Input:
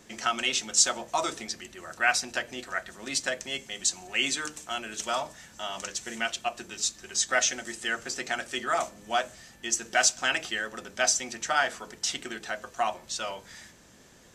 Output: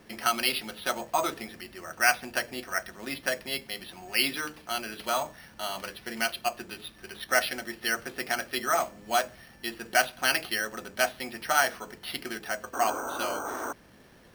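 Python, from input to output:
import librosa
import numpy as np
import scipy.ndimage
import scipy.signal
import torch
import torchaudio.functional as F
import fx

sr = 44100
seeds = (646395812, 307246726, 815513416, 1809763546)

y = fx.spec_paint(x, sr, seeds[0], shape='noise', start_s=12.73, length_s=1.0, low_hz=240.0, high_hz=1600.0, level_db=-36.0)
y = np.repeat(scipy.signal.resample_poly(y, 1, 6), 6)[:len(y)]
y = y * librosa.db_to_amplitude(1.5)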